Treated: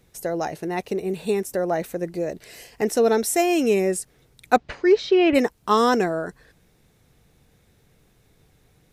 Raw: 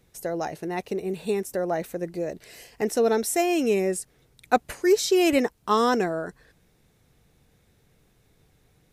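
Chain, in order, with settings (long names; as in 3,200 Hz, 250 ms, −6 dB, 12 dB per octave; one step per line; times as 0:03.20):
0:04.56–0:05.34: low-pass filter 5,300 Hz → 3,000 Hz 24 dB per octave
level +3 dB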